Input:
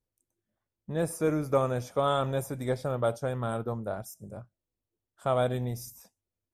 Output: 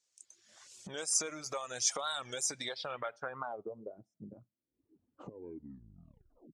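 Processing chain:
turntable brake at the end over 1.54 s
camcorder AGC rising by 40 dB per second
low-pass filter sweep 6,800 Hz → 260 Hz, 0:02.47–0:04.11
downward compressor 3 to 1, threshold −34 dBFS, peak gain reduction 12 dB
reverb reduction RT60 1.1 s
meter weighting curve ITU-R 468
wow of a warped record 45 rpm, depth 160 cents

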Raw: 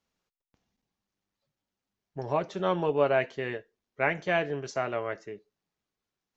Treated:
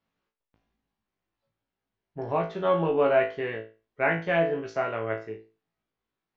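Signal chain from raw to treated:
low-pass filter 3,100 Hz 12 dB per octave
flutter between parallel walls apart 3.1 metres, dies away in 0.31 s

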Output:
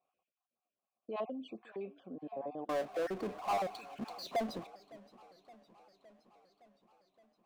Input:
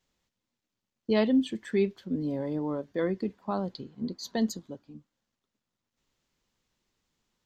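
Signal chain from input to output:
time-frequency cells dropped at random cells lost 34%
high-shelf EQ 2,200 Hz −12 dB
brickwall limiter −26.5 dBFS, peak gain reduction 10.5 dB
formant filter a
soft clipping −35.5 dBFS, distortion −26 dB
0:02.69–0:04.67: power curve on the samples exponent 0.5
feedback echo with a swinging delay time 565 ms, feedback 67%, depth 162 cents, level −21 dB
level +11.5 dB

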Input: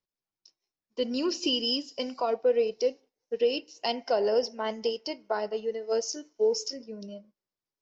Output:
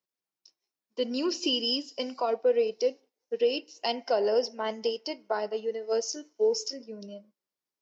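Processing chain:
high-pass filter 180 Hz 12 dB per octave

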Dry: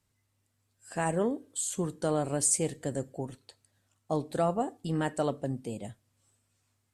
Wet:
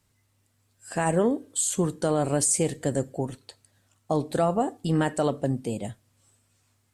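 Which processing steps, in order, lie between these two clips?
brickwall limiter −20 dBFS, peak gain reduction 6.5 dB
level +7 dB

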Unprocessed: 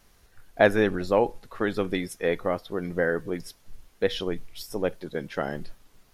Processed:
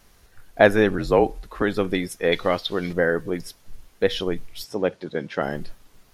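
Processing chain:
0:00.98–0:01.62: frequency shifter −45 Hz
0:02.32–0:02.93: parametric band 3,800 Hz +15 dB 1.5 octaves
0:04.64–0:05.42: band-pass filter 110–6,100 Hz
level +4 dB

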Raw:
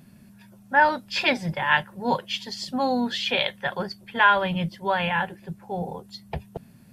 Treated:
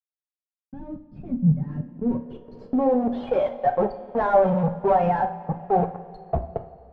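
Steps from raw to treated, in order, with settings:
spectral dynamics exaggerated over time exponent 2
fuzz pedal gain 46 dB, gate −42 dBFS
brickwall limiter −16 dBFS, peak gain reduction 5.5 dB
coupled-rooms reverb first 0.31 s, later 2.9 s, from −18 dB, DRR 4.5 dB
low-pass filter sweep 180 Hz → 740 Hz, 0:01.42–0:03.47
level −3.5 dB

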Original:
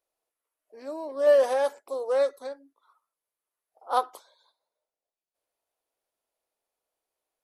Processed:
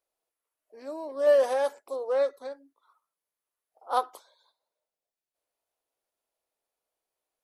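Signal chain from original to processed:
0:01.95–0:02.50: parametric band 9,400 Hz −12 dB → −5 dB 1.4 octaves
level −1.5 dB

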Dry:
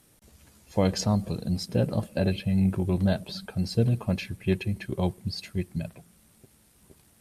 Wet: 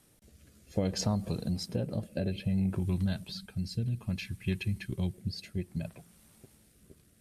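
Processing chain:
0:02.79–0:05.14: parametric band 560 Hz −12.5 dB 1.8 octaves
downward compressor, threshold −25 dBFS, peak gain reduction 7.5 dB
rotating-speaker cabinet horn 0.6 Hz

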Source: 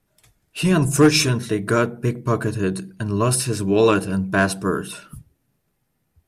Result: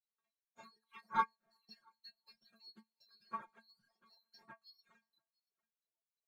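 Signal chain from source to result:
neighbouring bands swapped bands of 4,000 Hz
Chebyshev low-pass filter 1,600 Hz, order 2
treble cut that deepens with the level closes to 1,300 Hz, closed at −30 dBFS
high-pass filter 100 Hz 24 dB per octave
feedback echo with a band-pass in the loop 362 ms, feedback 81%, band-pass 520 Hz, level −23 dB
leveller curve on the samples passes 1
stiff-string resonator 220 Hz, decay 0.23 s, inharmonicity 0.002
single-tap delay 682 ms −22.5 dB
reverb reduction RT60 1.5 s
comb filter 5.5 ms, depth 78%
expander for the loud parts 1.5 to 1, over −54 dBFS

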